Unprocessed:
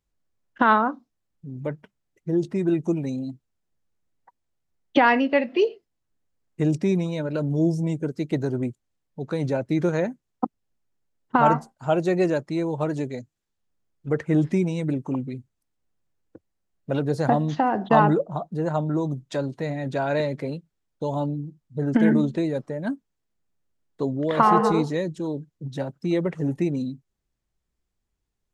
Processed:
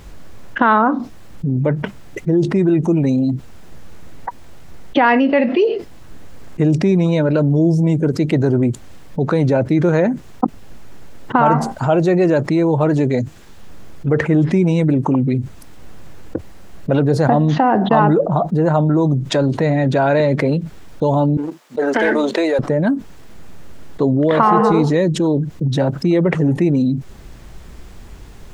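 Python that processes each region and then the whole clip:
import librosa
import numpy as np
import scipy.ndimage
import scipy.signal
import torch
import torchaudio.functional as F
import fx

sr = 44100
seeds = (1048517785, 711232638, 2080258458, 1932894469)

y = fx.chain(x, sr, fx.bessel_highpass(hz=630.0, order=4),
    fx.leveller(passes=1), at=(21.37, 22.59))
y = fx.high_shelf(y, sr, hz=4100.0, db=-9.5)
y = fx.env_flatten(y, sr, amount_pct=70)
y = y * librosa.db_to_amplitude(3.0)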